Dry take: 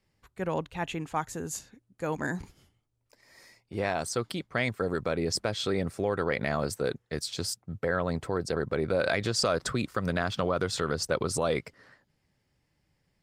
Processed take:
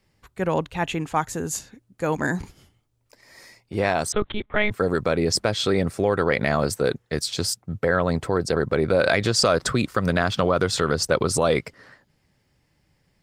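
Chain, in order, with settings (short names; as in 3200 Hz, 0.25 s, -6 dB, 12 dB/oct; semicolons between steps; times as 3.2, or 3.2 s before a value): 4.12–4.71 monotone LPC vocoder at 8 kHz 210 Hz; gain +7.5 dB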